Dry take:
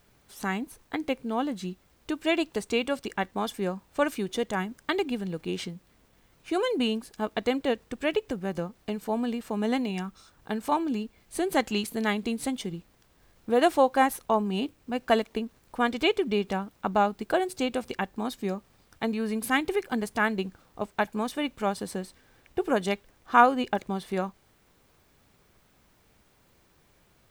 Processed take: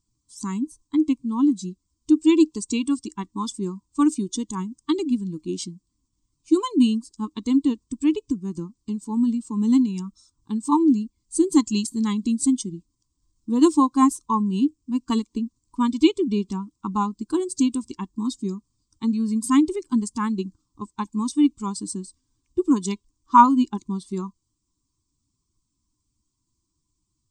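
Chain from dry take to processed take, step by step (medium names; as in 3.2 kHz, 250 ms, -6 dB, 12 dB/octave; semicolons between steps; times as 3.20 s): expander on every frequency bin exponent 1.5; FFT filter 160 Hz 0 dB, 310 Hz +15 dB, 640 Hz -30 dB, 1 kHz +12 dB, 1.6 kHz -15 dB, 2.9 kHz -2 dB, 8.2 kHz +15 dB, 13 kHz -18 dB; trim +2.5 dB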